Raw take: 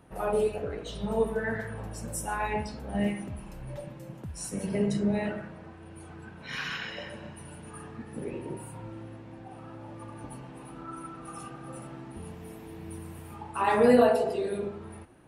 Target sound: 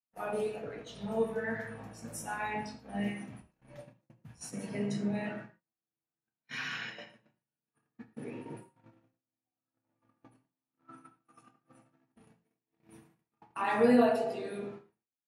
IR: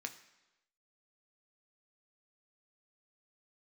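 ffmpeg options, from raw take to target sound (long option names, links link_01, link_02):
-filter_complex "[0:a]agate=range=-46dB:threshold=-38dB:ratio=16:detection=peak[link_01];[1:a]atrim=start_sample=2205,afade=type=out:start_time=0.17:duration=0.01,atrim=end_sample=7938[link_02];[link_01][link_02]afir=irnorm=-1:irlink=0,volume=-2dB"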